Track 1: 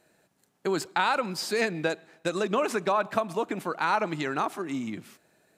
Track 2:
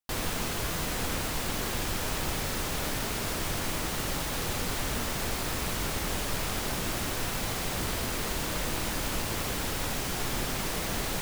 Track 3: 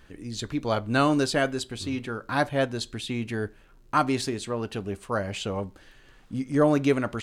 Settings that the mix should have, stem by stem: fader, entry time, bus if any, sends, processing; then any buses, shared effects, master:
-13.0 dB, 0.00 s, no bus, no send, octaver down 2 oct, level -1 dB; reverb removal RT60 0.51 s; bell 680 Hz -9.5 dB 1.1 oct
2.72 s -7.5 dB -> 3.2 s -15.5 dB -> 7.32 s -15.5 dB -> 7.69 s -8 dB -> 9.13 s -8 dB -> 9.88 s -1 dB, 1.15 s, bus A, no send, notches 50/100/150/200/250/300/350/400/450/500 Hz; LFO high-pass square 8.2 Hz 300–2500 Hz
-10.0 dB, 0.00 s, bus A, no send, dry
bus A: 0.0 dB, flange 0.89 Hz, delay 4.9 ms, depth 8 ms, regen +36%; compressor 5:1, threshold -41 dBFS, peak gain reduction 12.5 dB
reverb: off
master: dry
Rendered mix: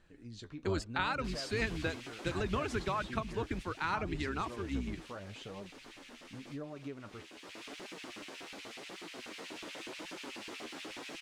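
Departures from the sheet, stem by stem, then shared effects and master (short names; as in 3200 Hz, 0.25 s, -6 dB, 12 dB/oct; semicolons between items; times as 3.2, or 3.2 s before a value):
stem 1 -13.0 dB -> -4.5 dB; master: extra air absorption 72 m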